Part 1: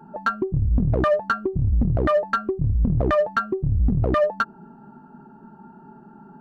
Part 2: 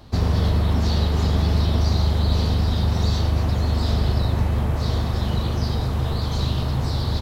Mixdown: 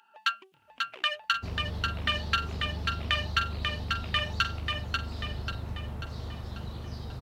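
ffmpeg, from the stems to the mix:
ffmpeg -i stem1.wav -i stem2.wav -filter_complex "[0:a]highpass=frequency=2800:width_type=q:width=4.3,volume=3dB,asplit=2[link_01][link_02];[link_02]volume=-4dB[link_03];[1:a]adelay=1300,volume=-16dB[link_04];[link_03]aecho=0:1:540|1080|1620|2160|2700|3240|3780:1|0.49|0.24|0.118|0.0576|0.0282|0.0138[link_05];[link_01][link_04][link_05]amix=inputs=3:normalize=0" out.wav

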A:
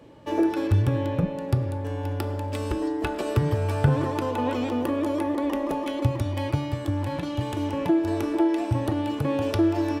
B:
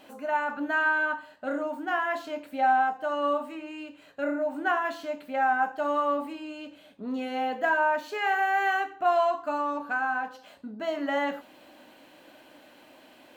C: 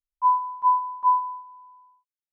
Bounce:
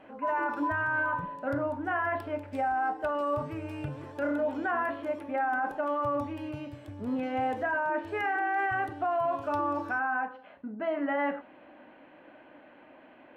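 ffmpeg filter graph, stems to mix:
ffmpeg -i stem1.wav -i stem2.wav -i stem3.wav -filter_complex "[0:a]volume=-17.5dB[link_01];[1:a]lowpass=frequency=2300:width=0.5412,lowpass=frequency=2300:width=1.3066,volume=0.5dB[link_02];[2:a]acompressor=threshold=-23dB:ratio=6,volume=-6.5dB[link_03];[link_01][link_02][link_03]amix=inputs=3:normalize=0,alimiter=limit=-22dB:level=0:latency=1:release=13" out.wav

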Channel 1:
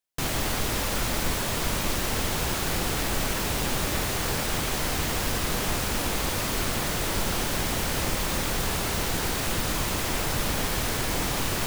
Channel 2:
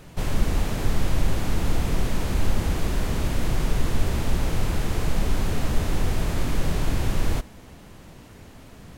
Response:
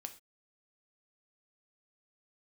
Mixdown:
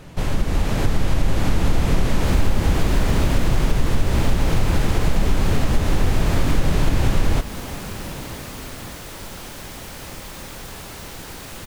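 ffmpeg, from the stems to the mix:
-filter_complex "[0:a]adelay=2050,volume=-12dB,asplit=2[link_01][link_02];[link_02]volume=-1dB[link_03];[1:a]highshelf=frequency=7700:gain=-6,dynaudnorm=framelen=150:gausssize=11:maxgain=11.5dB,volume=0.5dB,asplit=2[link_04][link_05];[link_05]volume=-1dB[link_06];[2:a]atrim=start_sample=2205[link_07];[link_03][link_06]amix=inputs=2:normalize=0[link_08];[link_08][link_07]afir=irnorm=-1:irlink=0[link_09];[link_01][link_04][link_09]amix=inputs=3:normalize=0,acompressor=threshold=-14dB:ratio=3"

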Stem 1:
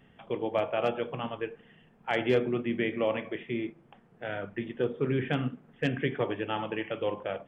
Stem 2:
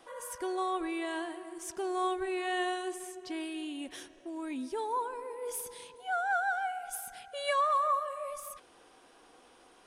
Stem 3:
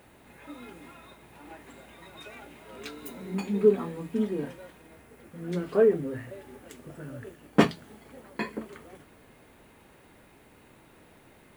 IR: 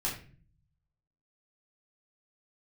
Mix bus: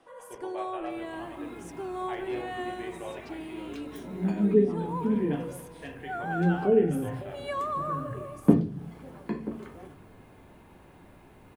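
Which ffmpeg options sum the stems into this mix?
-filter_complex "[0:a]bass=frequency=250:gain=-15,treble=frequency=4000:gain=6,volume=-12dB,asplit=2[link_01][link_02];[link_02]volume=-3.5dB[link_03];[1:a]volume=-1.5dB[link_04];[2:a]bandreject=frequency=1900:width=13,acrossover=split=490[link_05][link_06];[link_06]acompressor=threshold=-44dB:ratio=10[link_07];[link_05][link_07]amix=inputs=2:normalize=0,adelay=900,volume=1.5dB,asplit=2[link_08][link_09];[link_09]volume=-9.5dB[link_10];[3:a]atrim=start_sample=2205[link_11];[link_03][link_10]amix=inputs=2:normalize=0[link_12];[link_12][link_11]afir=irnorm=-1:irlink=0[link_13];[link_01][link_04][link_08][link_13]amix=inputs=4:normalize=0,highshelf=frequency=2000:gain=-9"

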